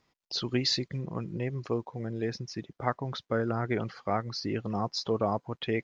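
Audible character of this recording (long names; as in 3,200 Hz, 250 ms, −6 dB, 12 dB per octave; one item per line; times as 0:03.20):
background noise floor −78 dBFS
spectral slope −4.5 dB per octave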